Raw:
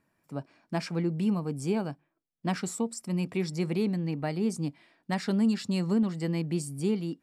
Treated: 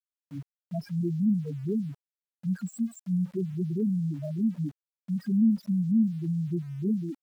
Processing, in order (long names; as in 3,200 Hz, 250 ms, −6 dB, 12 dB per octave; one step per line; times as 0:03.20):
spectral peaks only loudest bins 2
centre clipping without the shift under −53 dBFS
level +3.5 dB